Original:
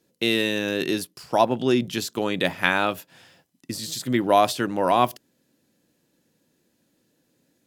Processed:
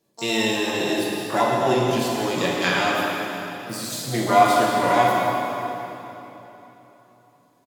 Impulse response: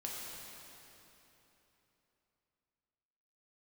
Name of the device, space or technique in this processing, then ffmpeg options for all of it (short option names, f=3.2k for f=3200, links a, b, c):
shimmer-style reverb: -filter_complex "[0:a]asettb=1/sr,asplit=3[a][b][c];[a]atrim=end=2.814[d];[b]atrim=start=2.81:end=3.97,asetpts=PTS-STARTPTS,afade=t=in:d=0.004:c=qsin,afade=t=out:st=1.156:d=0.004:c=qsin,equalizer=f=9.3k:t=o:w=1:g=4[e];[c]atrim=start=3.966[f];[d][e]acrossfade=d=0.004:c1=hsin:c2=qsin[g];[g][f]acrossfade=d=0.004:c1=qsin:c2=hsin,aecho=1:1:7:0.34,asplit=2[h][i];[i]asetrate=88200,aresample=44100,atempo=0.5,volume=-8dB[j];[h][j]amix=inputs=2:normalize=0[k];[1:a]atrim=start_sample=2205[l];[k][l]afir=irnorm=-1:irlink=0"